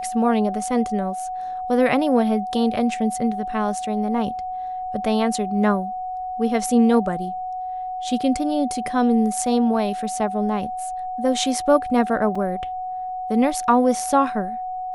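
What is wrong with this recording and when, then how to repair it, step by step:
whistle 740 Hz −26 dBFS
0:12.35: drop-out 4.5 ms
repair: notch filter 740 Hz, Q 30
repair the gap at 0:12.35, 4.5 ms

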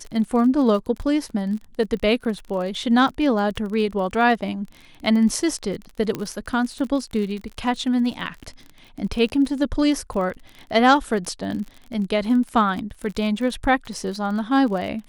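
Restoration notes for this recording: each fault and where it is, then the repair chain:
surface crackle 36 per second −30 dBFS
0:06.15: click −13 dBFS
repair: click removal

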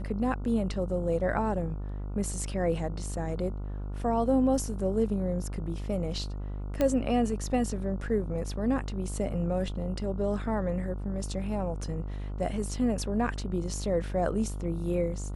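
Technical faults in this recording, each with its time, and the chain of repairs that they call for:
mains buzz 50 Hz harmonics 29 −35 dBFS
0:06.81: click −14 dBFS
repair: click removal
hum removal 50 Hz, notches 29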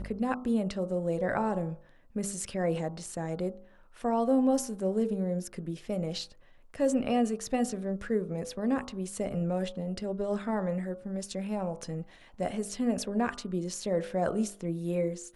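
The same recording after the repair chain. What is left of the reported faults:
none of them is left

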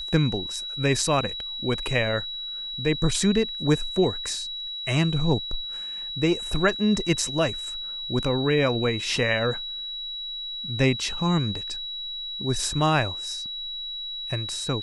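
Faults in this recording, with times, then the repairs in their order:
whistle 3,900 Hz −31 dBFS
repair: notch filter 3,900 Hz, Q 30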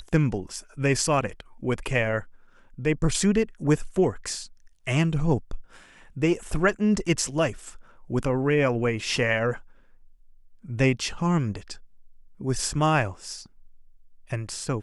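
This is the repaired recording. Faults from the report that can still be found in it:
none of them is left

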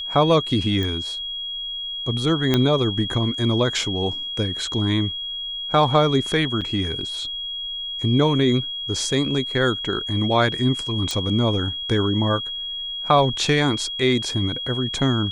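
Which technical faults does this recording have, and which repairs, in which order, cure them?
whistle 3,300 Hz −27 dBFS
0:00.83: click −14 dBFS
0:02.54: click −5 dBFS
0:06.61–0:06.62: drop-out 6.1 ms
0:11.11: click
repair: click removal
notch filter 3,300 Hz, Q 30
repair the gap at 0:06.61, 6.1 ms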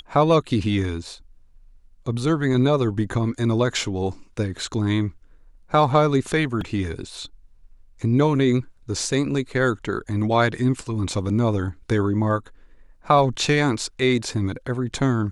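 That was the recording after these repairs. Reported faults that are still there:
0:02.54: click

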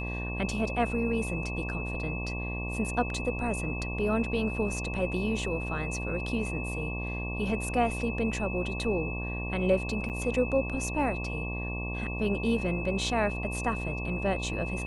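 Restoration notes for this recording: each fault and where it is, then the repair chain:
mains buzz 60 Hz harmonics 19 −35 dBFS
whistle 2,600 Hz −37 dBFS
0:10.09–0:10.10: drop-out 8.2 ms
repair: notch filter 2,600 Hz, Q 30
hum removal 60 Hz, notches 19
repair the gap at 0:10.09, 8.2 ms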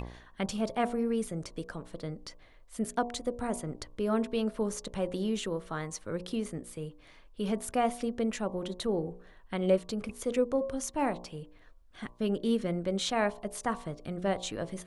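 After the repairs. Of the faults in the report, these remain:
none of them is left

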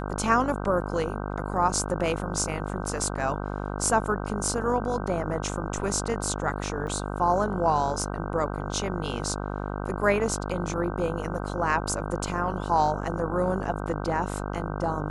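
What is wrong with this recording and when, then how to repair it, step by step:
mains buzz 50 Hz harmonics 31 −32 dBFS
0:06.87: drop-out 3 ms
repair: hum removal 50 Hz, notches 31
repair the gap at 0:06.87, 3 ms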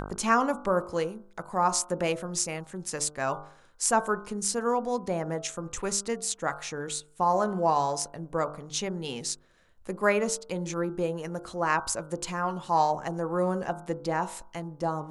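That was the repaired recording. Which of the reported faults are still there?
none of them is left

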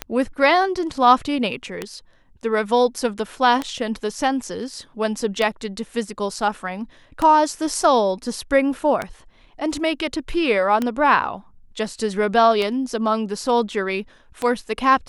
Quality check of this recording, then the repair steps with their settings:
scratch tick 33 1/3 rpm −9 dBFS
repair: click removal

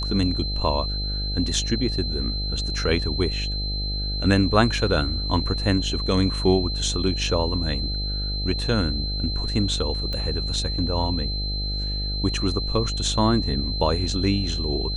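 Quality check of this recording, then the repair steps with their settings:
mains buzz 50 Hz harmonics 16 −28 dBFS
whistle 4,100 Hz −29 dBFS
0:10.13: click −18 dBFS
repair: click removal
notch filter 4,100 Hz, Q 30
hum removal 50 Hz, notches 16

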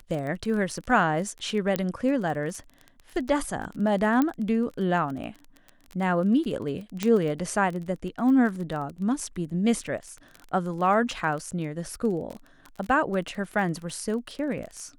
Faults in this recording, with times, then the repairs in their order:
surface crackle 22 per second −32 dBFS
0:01.76: click −12 dBFS
0:04.22: click −12 dBFS
0:07.03: click −12 dBFS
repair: click removal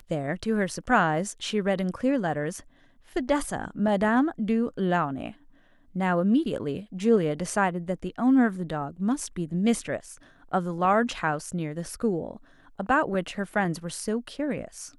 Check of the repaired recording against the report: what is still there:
0:07.03: click

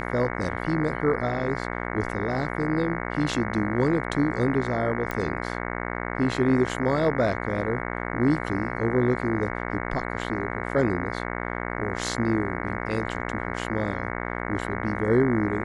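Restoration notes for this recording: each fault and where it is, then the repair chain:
mains buzz 60 Hz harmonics 37 −31 dBFS
0:05.11: click −15 dBFS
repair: click removal
hum removal 60 Hz, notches 37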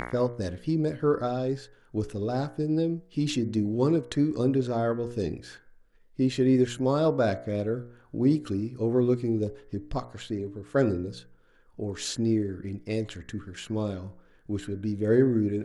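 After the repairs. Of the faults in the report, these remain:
none of them is left

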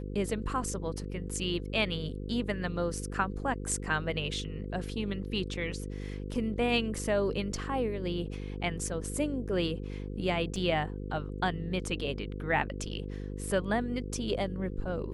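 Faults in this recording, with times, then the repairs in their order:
mains buzz 50 Hz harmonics 10 −38 dBFS
0:10.56: drop-out 2.6 ms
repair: hum removal 50 Hz, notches 10
repair the gap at 0:10.56, 2.6 ms

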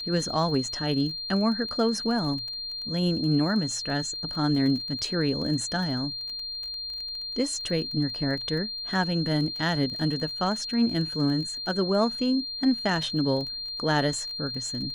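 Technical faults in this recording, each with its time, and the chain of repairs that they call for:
surface crackle 22 per second −34 dBFS
whistle 4,200 Hz −32 dBFS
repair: click removal
notch filter 4,200 Hz, Q 30

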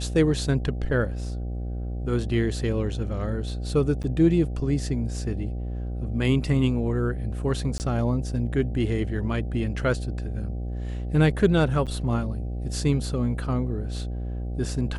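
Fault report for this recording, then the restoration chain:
mains buzz 60 Hz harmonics 13 −30 dBFS
0:04.03–0:04.04: drop-out 9 ms
0:07.78–0:07.80: drop-out 19 ms
0:11.86–0:11.87: drop-out 7.7 ms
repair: hum removal 60 Hz, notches 13
repair the gap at 0:04.03, 9 ms
repair the gap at 0:07.78, 19 ms
repair the gap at 0:11.86, 7.7 ms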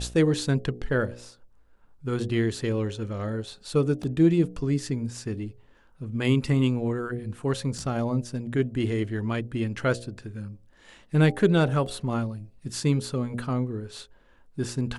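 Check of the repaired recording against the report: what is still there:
none of them is left

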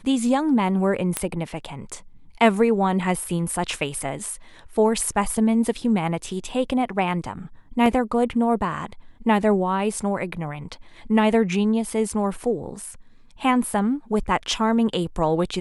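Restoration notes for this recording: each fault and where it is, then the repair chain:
0:01.17: click −7 dBFS
0:07.86: drop-out 2.1 ms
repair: click removal
repair the gap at 0:07.86, 2.1 ms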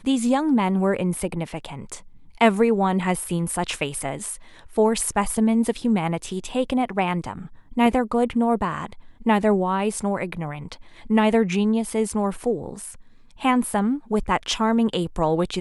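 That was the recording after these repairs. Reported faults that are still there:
none of them is left

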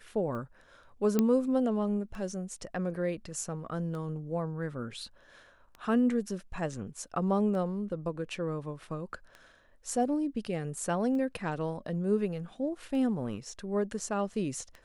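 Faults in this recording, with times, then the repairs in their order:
scratch tick 33 1/3 rpm −30 dBFS
0:01.19: click −13 dBFS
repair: click removal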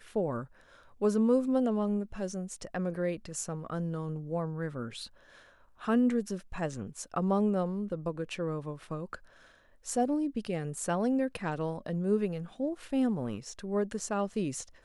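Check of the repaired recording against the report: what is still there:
none of them is left

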